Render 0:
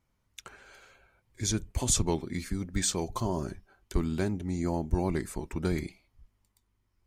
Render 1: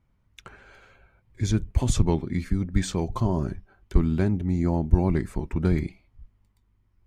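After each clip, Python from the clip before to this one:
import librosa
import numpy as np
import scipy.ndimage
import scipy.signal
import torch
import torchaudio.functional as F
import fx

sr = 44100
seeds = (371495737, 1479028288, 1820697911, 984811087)

y = fx.bass_treble(x, sr, bass_db=7, treble_db=-11)
y = F.gain(torch.from_numpy(y), 2.5).numpy()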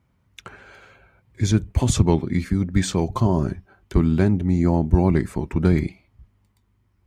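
y = scipy.signal.sosfilt(scipy.signal.butter(2, 70.0, 'highpass', fs=sr, output='sos'), x)
y = F.gain(torch.from_numpy(y), 5.5).numpy()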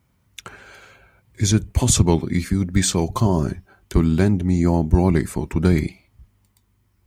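y = fx.high_shelf(x, sr, hz=4700.0, db=11.5)
y = F.gain(torch.from_numpy(y), 1.0).numpy()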